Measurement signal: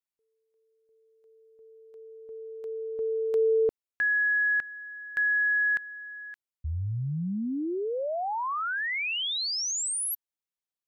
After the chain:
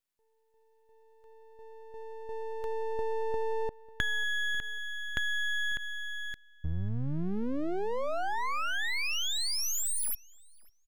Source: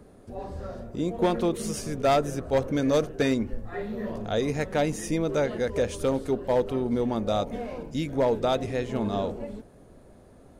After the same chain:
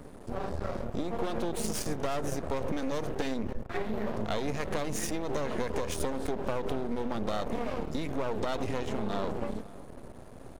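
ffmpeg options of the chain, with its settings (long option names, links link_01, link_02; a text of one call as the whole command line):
ffmpeg -i in.wav -filter_complex "[0:a]acompressor=threshold=-35dB:ratio=12:attack=20:release=79:knee=6:detection=peak,aeval=exprs='max(val(0),0)':channel_layout=same,asplit=2[link_01][link_02];[link_02]adelay=545,lowpass=frequency=3300:poles=1,volume=-20.5dB,asplit=2[link_03][link_04];[link_04]adelay=545,lowpass=frequency=3300:poles=1,volume=0.25[link_05];[link_03][link_05]amix=inputs=2:normalize=0[link_06];[link_01][link_06]amix=inputs=2:normalize=0,volume=8dB" out.wav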